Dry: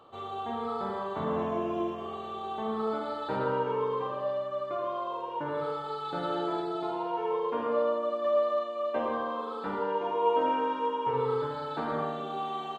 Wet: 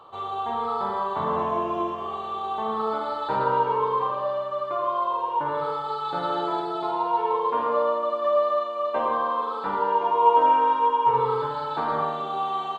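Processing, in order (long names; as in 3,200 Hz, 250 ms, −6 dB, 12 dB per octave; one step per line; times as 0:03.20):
graphic EQ with 15 bands 250 Hz −5 dB, 1,000 Hz +9 dB, 4,000 Hz +3 dB
on a send: delay with a high-pass on its return 304 ms, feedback 65%, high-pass 1,800 Hz, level −15 dB
on the sum: level +2.5 dB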